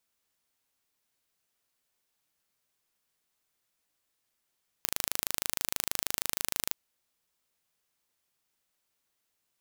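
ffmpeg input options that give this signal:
ffmpeg -f lavfi -i "aevalsrc='0.794*eq(mod(n,1677),0)':duration=1.9:sample_rate=44100" out.wav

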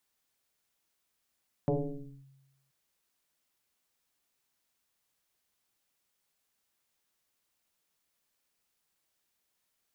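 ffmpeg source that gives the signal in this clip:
ffmpeg -f lavfi -i "aevalsrc='0.0708*pow(10,-3*t/1.11)*sin(2*PI*136*t+3.7*clip(1-t/0.58,0,1)*sin(2*PI*1.06*136*t))':duration=1.03:sample_rate=44100" out.wav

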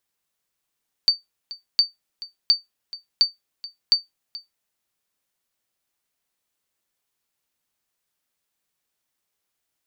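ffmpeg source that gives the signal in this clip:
ffmpeg -f lavfi -i "aevalsrc='0.422*(sin(2*PI*4590*mod(t,0.71))*exp(-6.91*mod(t,0.71)/0.16)+0.119*sin(2*PI*4590*max(mod(t,0.71)-0.43,0))*exp(-6.91*max(mod(t,0.71)-0.43,0)/0.16))':duration=3.55:sample_rate=44100" out.wav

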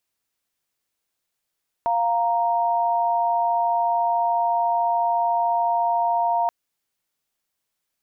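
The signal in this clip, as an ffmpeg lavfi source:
ffmpeg -f lavfi -i "aevalsrc='0.0891*(sin(2*PI*698.46*t)+sin(2*PI*932.33*t))':duration=4.63:sample_rate=44100" out.wav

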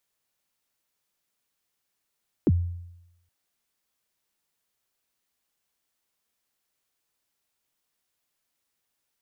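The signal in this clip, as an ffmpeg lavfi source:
ffmpeg -f lavfi -i "aevalsrc='0.188*pow(10,-3*t/0.88)*sin(2*PI*(410*0.039/log(87/410)*(exp(log(87/410)*min(t,0.039)/0.039)-1)+87*max(t-0.039,0)))':duration=0.82:sample_rate=44100" out.wav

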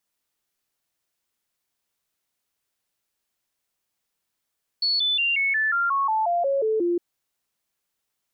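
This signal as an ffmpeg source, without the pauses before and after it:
ffmpeg -f lavfi -i "aevalsrc='0.106*clip(min(mod(t,0.18),0.18-mod(t,0.18))/0.005,0,1)*sin(2*PI*4410*pow(2,-floor(t/0.18)/3)*mod(t,0.18))':duration=2.16:sample_rate=44100" out.wav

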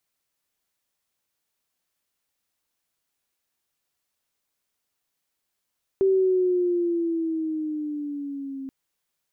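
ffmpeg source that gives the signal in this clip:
ffmpeg -f lavfi -i "aevalsrc='pow(10,(-16-15.5*t/2.68)/20)*sin(2*PI*388*2.68/(-6.5*log(2)/12)*(exp(-6.5*log(2)/12*t/2.68)-1))':duration=2.68:sample_rate=44100" out.wav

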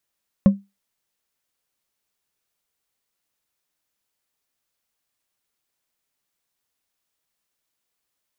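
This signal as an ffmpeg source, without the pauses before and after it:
ffmpeg -f lavfi -i "aevalsrc='0.562*pow(10,-3*t/0.22)*sin(2*PI*198*t)+0.141*pow(10,-3*t/0.108)*sin(2*PI*545.9*t)+0.0355*pow(10,-3*t/0.068)*sin(2*PI*1070*t)+0.00891*pow(10,-3*t/0.048)*sin(2*PI*1768.7*t)+0.00224*pow(10,-3*t/0.036)*sin(2*PI*2641.3*t)':duration=0.89:sample_rate=44100" out.wav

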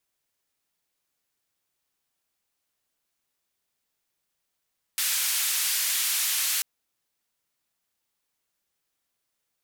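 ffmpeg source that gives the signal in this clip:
ffmpeg -f lavfi -i "anoisesrc=color=white:duration=1.64:sample_rate=44100:seed=1,highpass=frequency=1800,lowpass=frequency=15000,volume=-18.9dB" out.wav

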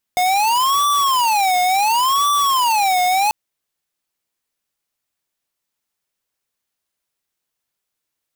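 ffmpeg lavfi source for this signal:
ffmpeg -f lavfi -i "aevalsrc='0.158*(2*lt(mod((942*t-218/(2*PI*0.7)*sin(2*PI*0.7*t)),1),0.5)-1)':duration=3.14:sample_rate=44100" out.wav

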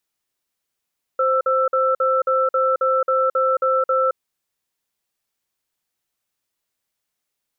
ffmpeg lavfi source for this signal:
ffmpeg -f lavfi -i "aevalsrc='0.126*(sin(2*PI*523*t)+sin(2*PI*1330*t))*clip(min(mod(t,0.27),0.22-mod(t,0.27))/0.005,0,1)':duration=2.97:sample_rate=44100" out.wav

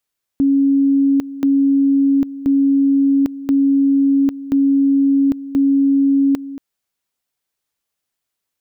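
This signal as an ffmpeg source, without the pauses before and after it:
ffmpeg -f lavfi -i "aevalsrc='pow(10,(-10.5-15.5*gte(mod(t,1.03),0.8))/20)*sin(2*PI*276*t)':duration=6.18:sample_rate=44100" out.wav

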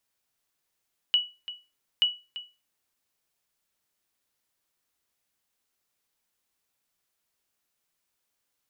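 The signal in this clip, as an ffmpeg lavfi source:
ffmpeg -f lavfi -i "aevalsrc='0.188*(sin(2*PI*2940*mod(t,0.88))*exp(-6.91*mod(t,0.88)/0.28)+0.178*sin(2*PI*2940*max(mod(t,0.88)-0.34,0))*exp(-6.91*max(mod(t,0.88)-0.34,0)/0.28))':duration=1.76:sample_rate=44100" out.wav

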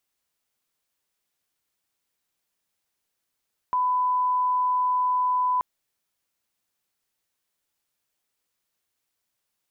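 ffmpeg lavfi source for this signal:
ffmpeg -f lavfi -i "sine=frequency=1000:duration=1.88:sample_rate=44100,volume=-1.94dB" out.wav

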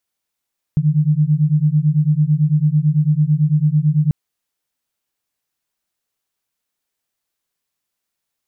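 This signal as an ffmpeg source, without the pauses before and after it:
ffmpeg -f lavfi -i "aevalsrc='0.178*(sin(2*PI*147*t)+sin(2*PI*156*t))':duration=3.34:sample_rate=44100" out.wav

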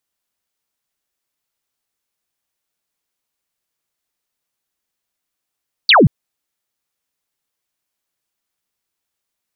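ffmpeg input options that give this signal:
ffmpeg -f lavfi -i "aevalsrc='0.531*clip(t/0.002,0,1)*clip((0.18-t)/0.002,0,1)*sin(2*PI*4800*0.18/log(110/4800)*(exp(log(110/4800)*t/0.18)-1))':duration=0.18:sample_rate=44100" out.wav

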